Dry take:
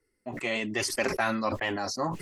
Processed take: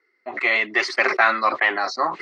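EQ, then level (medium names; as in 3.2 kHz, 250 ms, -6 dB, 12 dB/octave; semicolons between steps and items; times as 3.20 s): cabinet simulation 330–5700 Hz, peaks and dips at 370 Hz +8 dB, 720 Hz +6 dB, 1.2 kHz +7 dB, 2.1 kHz +9 dB, 4.1 kHz +9 dB; peaking EQ 1.5 kHz +10.5 dB 1.7 oct; -1.0 dB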